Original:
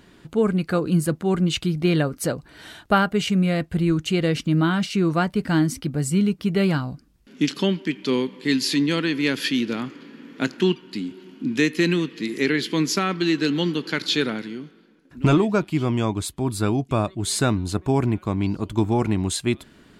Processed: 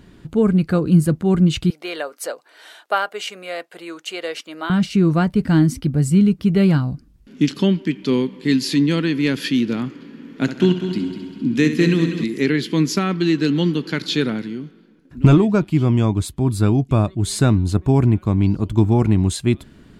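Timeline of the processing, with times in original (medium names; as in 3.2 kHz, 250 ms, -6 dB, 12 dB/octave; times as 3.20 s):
1.70–4.70 s: high-pass 510 Hz 24 dB/octave
10.30–12.24 s: multi-head delay 66 ms, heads first and third, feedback 61%, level -10.5 dB
whole clip: bass shelf 260 Hz +11.5 dB; trim -1 dB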